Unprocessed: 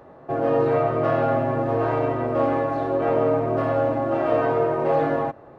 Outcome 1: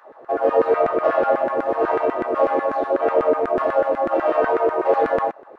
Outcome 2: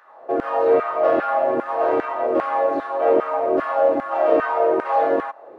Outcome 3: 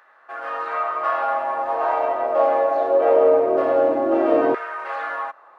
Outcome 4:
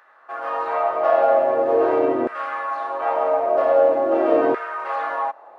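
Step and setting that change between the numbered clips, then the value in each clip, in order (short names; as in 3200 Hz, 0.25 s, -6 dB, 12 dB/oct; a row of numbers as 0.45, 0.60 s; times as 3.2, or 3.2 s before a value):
LFO high-pass, rate: 8.1, 2.5, 0.22, 0.44 Hz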